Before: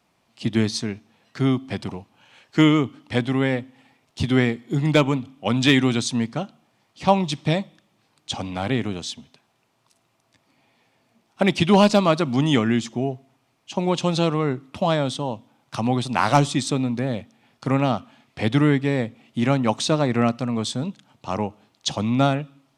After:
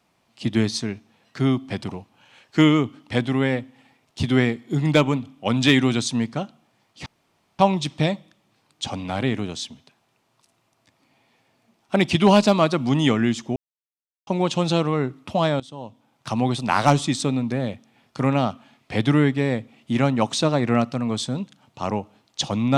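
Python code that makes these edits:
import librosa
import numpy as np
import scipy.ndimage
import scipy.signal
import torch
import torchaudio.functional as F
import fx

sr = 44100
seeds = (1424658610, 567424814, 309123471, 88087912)

y = fx.edit(x, sr, fx.insert_room_tone(at_s=7.06, length_s=0.53),
    fx.silence(start_s=13.03, length_s=0.71),
    fx.fade_in_from(start_s=15.07, length_s=0.72, floor_db=-18.5), tone=tone)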